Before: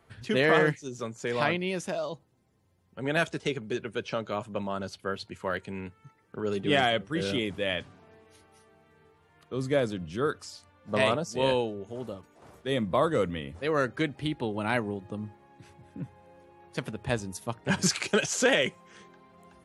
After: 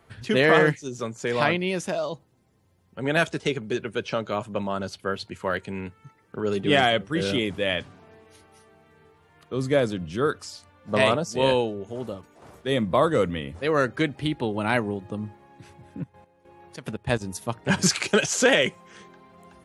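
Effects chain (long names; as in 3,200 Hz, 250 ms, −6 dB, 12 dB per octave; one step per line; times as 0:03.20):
0:16.02–0:17.20: gate pattern ".x.x..xxx" 145 BPM −12 dB
level +4.5 dB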